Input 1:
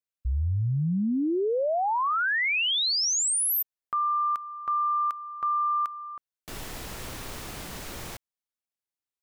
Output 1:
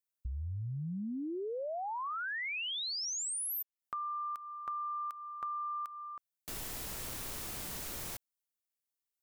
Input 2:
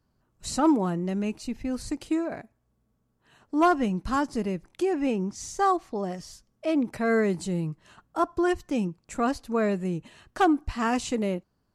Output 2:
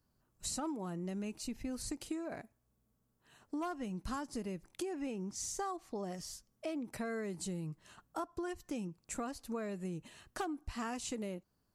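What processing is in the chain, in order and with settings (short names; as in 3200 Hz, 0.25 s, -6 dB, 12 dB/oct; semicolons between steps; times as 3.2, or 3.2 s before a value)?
high shelf 6500 Hz +11 dB; compressor 12:1, threshold -30 dBFS; gain -6 dB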